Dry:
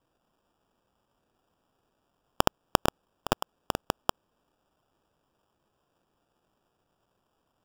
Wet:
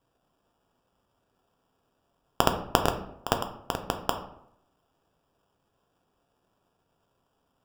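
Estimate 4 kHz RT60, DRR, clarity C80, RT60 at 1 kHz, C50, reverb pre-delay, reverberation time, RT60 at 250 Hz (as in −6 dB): 0.45 s, 4.5 dB, 12.5 dB, 0.70 s, 9.5 dB, 3 ms, 0.75 s, 0.75 s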